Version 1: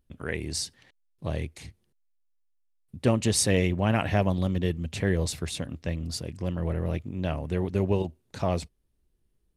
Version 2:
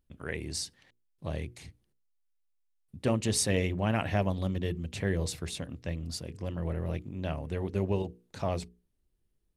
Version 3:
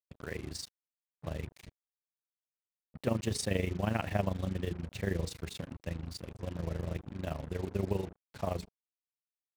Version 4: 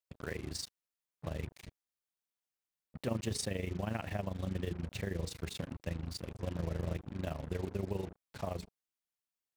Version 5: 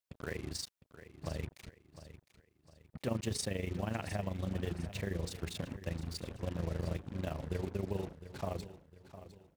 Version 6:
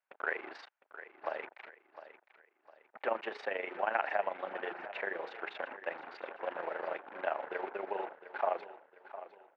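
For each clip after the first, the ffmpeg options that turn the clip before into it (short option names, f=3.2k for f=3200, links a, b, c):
-af "bandreject=f=60:t=h:w=6,bandreject=f=120:t=h:w=6,bandreject=f=180:t=h:w=6,bandreject=f=240:t=h:w=6,bandreject=f=300:t=h:w=6,bandreject=f=360:t=h:w=6,bandreject=f=420:t=h:w=6,bandreject=f=480:t=h:w=6,volume=-4dB"
-af "tremolo=f=25:d=0.788,highshelf=f=6k:g=-9,acrusher=bits=7:mix=0:aa=0.5"
-af "alimiter=level_in=0.5dB:limit=-24dB:level=0:latency=1:release=238,volume=-0.5dB,volume=1dB"
-af "aecho=1:1:707|1414|2121|2828:0.2|0.0758|0.0288|0.0109"
-af "highpass=f=480:w=0.5412,highpass=f=480:w=1.3066,equalizer=f=480:t=q:w=4:g=-4,equalizer=f=830:t=q:w=4:g=6,equalizer=f=1.5k:t=q:w=4:g=6,lowpass=f=2.4k:w=0.5412,lowpass=f=2.4k:w=1.3066,volume=8dB"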